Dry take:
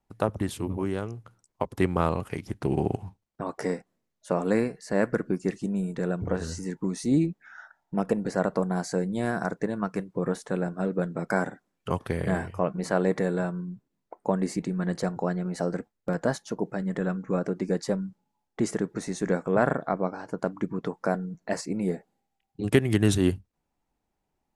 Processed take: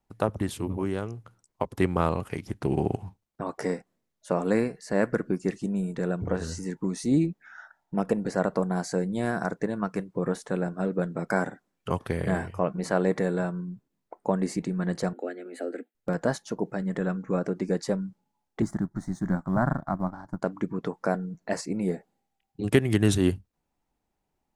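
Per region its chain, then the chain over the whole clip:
0:15.13–0:15.95: Butterworth high-pass 240 Hz 72 dB per octave + phaser with its sweep stopped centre 2,400 Hz, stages 4
0:18.62–0:20.42: mu-law and A-law mismatch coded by A + spectral tilt −2.5 dB per octave + phaser with its sweep stopped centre 1,100 Hz, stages 4
whole clip: no processing

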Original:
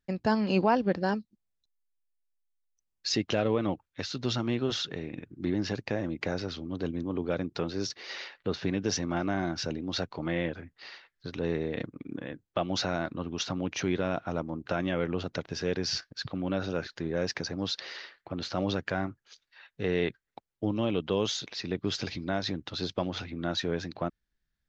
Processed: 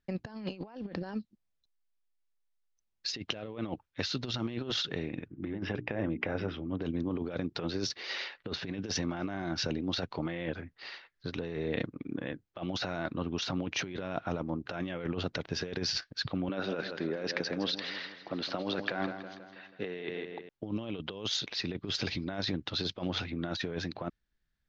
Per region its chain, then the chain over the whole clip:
0:05.28–0:06.82: Savitzky-Golay smoothing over 25 samples + mains-hum notches 60/120/180/240/300/360/420 Hz
0:16.49–0:20.49: band-pass filter 210–4,700 Hz + repeating echo 162 ms, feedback 55%, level −12 dB
whole clip: low-pass filter 5,500 Hz 12 dB per octave; dynamic equaliser 3,600 Hz, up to +3 dB, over −47 dBFS, Q 0.8; compressor whose output falls as the input rises −32 dBFS, ratio −0.5; level −1.5 dB

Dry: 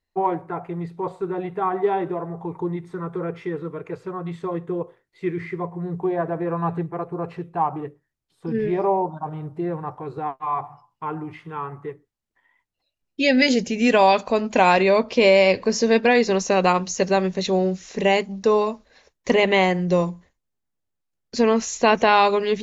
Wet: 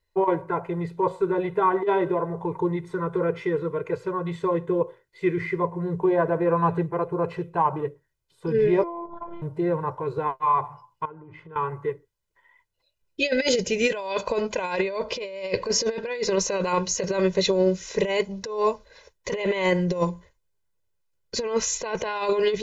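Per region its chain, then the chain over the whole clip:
0:08.83–0:09.42: downward compressor 10 to 1, threshold −30 dBFS + phases set to zero 343 Hz + high-frequency loss of the air 79 metres
0:11.05–0:11.56: low-pass filter 1,100 Hz 6 dB per octave + downward compressor 12 to 1, threshold −42 dBFS
whole clip: comb filter 2 ms, depth 74%; compressor whose output falls as the input rises −19 dBFS, ratio −0.5; level −2 dB

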